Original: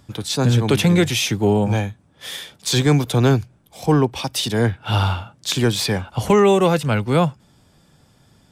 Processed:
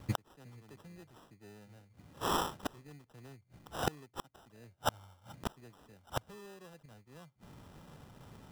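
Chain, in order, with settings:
gate with flip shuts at −18 dBFS, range −38 dB
decimation without filtering 20×

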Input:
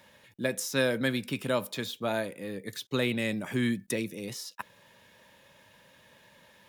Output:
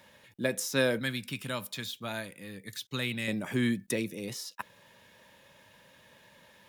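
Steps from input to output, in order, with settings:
0:00.99–0:03.28: parametric band 470 Hz −11 dB 2.2 octaves

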